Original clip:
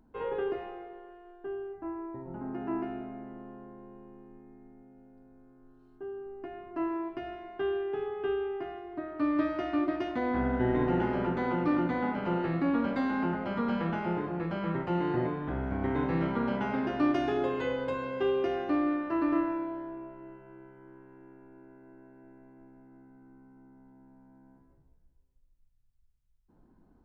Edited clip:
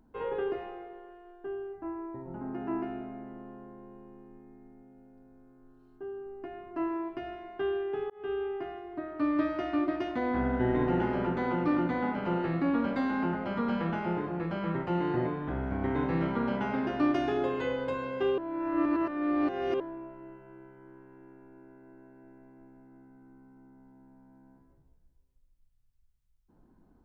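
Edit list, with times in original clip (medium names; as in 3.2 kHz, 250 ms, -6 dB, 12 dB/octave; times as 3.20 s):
8.10–8.51 s: fade in equal-power
18.38–19.80 s: reverse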